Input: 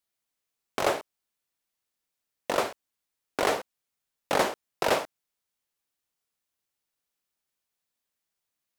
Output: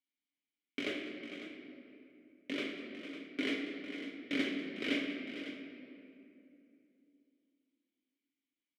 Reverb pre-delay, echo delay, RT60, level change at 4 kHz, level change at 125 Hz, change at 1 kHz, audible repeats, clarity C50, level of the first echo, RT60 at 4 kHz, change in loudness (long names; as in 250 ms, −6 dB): 5 ms, 193 ms, 2.7 s, −5.0 dB, −10.5 dB, −24.5 dB, 3, 2.5 dB, −16.0 dB, 1.6 s, −10.0 dB